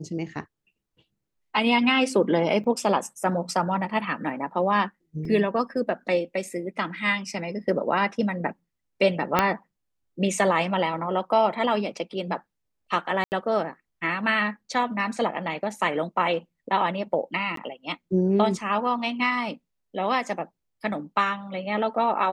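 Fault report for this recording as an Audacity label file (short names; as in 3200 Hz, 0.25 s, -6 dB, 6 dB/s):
2.640000	2.640000	gap 3.9 ms
5.250000	5.250000	gap 2.9 ms
9.390000	9.390000	pop -5 dBFS
13.240000	13.320000	gap 79 ms
17.560000	17.570000	gap 13 ms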